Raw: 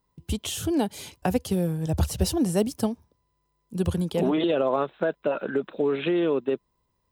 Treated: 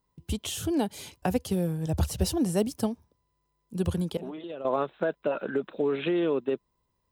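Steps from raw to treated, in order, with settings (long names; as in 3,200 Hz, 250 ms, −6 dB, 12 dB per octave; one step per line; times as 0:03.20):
0:04.17–0:04.65: downward expander −13 dBFS
level −2.5 dB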